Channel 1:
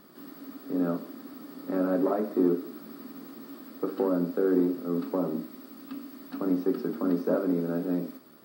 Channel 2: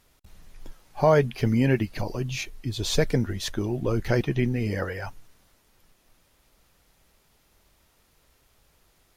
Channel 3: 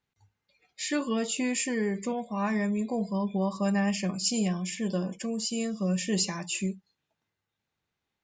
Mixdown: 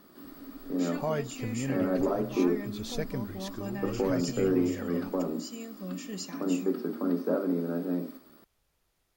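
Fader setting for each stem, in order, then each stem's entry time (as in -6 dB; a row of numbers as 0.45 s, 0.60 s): -2.0 dB, -12.0 dB, -11.0 dB; 0.00 s, 0.00 s, 0.00 s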